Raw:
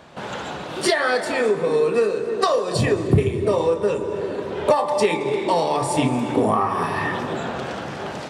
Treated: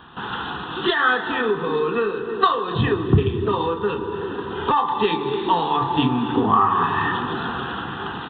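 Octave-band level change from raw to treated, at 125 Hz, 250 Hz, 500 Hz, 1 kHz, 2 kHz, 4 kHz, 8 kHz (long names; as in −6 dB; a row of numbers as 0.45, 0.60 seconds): +0.5 dB, +0.5 dB, −4.0 dB, +3.5 dB, +2.5 dB, +2.0 dB, below −40 dB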